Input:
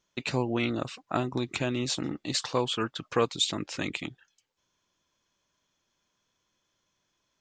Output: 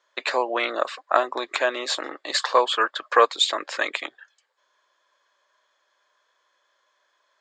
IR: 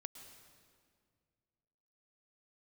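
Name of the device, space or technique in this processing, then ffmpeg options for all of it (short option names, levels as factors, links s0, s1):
phone speaker on a table: -af "highpass=f=460:w=0.5412,highpass=f=460:w=1.3066,equalizer=f=590:t=q:w=4:g=6,equalizer=f=1100:t=q:w=4:g=7,equalizer=f=1700:t=q:w=4:g=9,equalizer=f=2700:t=q:w=4:g=-5,equalizer=f=5900:t=q:w=4:g=-10,lowpass=f=7800:w=0.5412,lowpass=f=7800:w=1.3066,volume=2.37"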